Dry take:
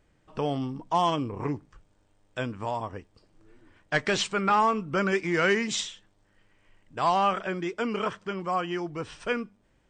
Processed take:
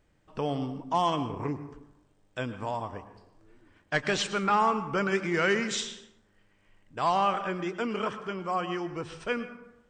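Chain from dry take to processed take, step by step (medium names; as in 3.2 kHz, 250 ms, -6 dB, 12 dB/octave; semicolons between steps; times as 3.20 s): plate-style reverb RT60 0.92 s, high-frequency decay 0.5×, pre-delay 90 ms, DRR 11.5 dB; trim -2 dB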